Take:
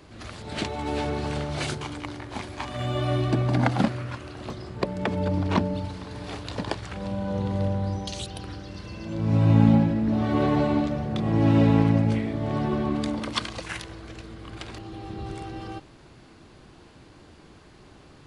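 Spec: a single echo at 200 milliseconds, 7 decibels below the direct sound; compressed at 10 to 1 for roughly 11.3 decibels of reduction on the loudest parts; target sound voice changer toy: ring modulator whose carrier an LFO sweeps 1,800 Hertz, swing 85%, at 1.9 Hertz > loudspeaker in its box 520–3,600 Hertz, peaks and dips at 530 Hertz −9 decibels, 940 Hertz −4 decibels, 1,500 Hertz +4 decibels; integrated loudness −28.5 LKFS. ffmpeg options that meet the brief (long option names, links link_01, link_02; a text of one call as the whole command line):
ffmpeg -i in.wav -af "acompressor=threshold=-23dB:ratio=10,aecho=1:1:200:0.447,aeval=exprs='val(0)*sin(2*PI*1800*n/s+1800*0.85/1.9*sin(2*PI*1.9*n/s))':channel_layout=same,highpass=520,equalizer=frequency=530:width_type=q:width=4:gain=-9,equalizer=frequency=940:width_type=q:width=4:gain=-4,equalizer=frequency=1500:width_type=q:width=4:gain=4,lowpass=frequency=3600:width=0.5412,lowpass=frequency=3600:width=1.3066,volume=2.5dB" out.wav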